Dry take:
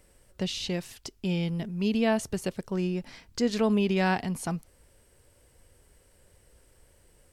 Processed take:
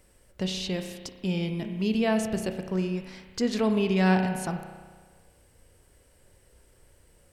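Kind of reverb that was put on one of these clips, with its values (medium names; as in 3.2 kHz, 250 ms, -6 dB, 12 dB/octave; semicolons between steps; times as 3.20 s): spring tank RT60 1.5 s, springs 32 ms, chirp 30 ms, DRR 6 dB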